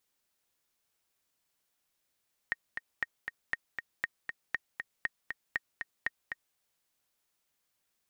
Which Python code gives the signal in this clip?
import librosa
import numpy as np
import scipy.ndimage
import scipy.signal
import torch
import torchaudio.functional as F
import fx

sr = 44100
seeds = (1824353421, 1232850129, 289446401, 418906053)

y = fx.click_track(sr, bpm=237, beats=2, bars=8, hz=1860.0, accent_db=6.0, level_db=-17.0)